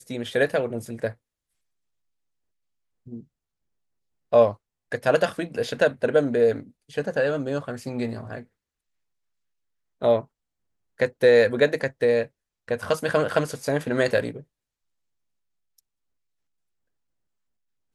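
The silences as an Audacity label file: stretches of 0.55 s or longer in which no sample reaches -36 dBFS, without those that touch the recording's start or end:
1.120000	3.070000	silence
3.200000	4.330000	silence
8.420000	10.020000	silence
10.220000	11.000000	silence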